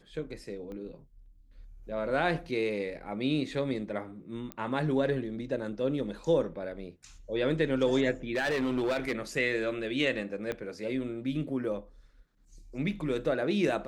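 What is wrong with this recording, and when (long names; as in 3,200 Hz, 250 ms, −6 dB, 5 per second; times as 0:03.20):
0:00.72: click −32 dBFS
0:04.52: click −22 dBFS
0:08.30–0:09.16: clipping −25 dBFS
0:10.52: click −20 dBFS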